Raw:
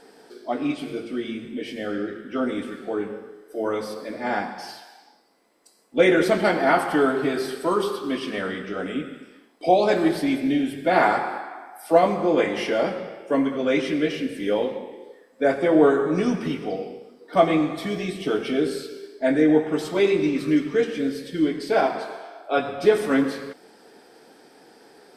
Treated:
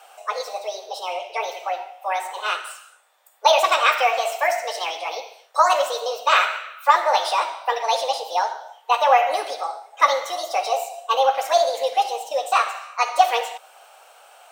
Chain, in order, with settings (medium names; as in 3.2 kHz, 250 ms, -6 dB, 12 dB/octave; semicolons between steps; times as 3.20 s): Chebyshev band-pass 360–9300 Hz, order 3; speed mistake 45 rpm record played at 78 rpm; trim +3 dB